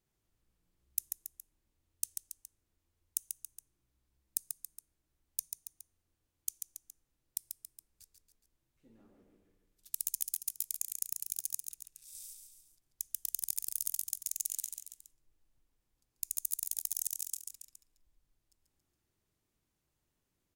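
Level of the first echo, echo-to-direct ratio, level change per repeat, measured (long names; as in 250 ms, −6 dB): −6.0 dB, −4.5 dB, −5.5 dB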